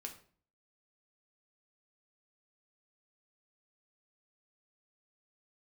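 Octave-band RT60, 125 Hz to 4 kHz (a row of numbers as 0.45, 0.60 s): 0.65, 0.60, 0.50, 0.45, 0.40, 0.35 s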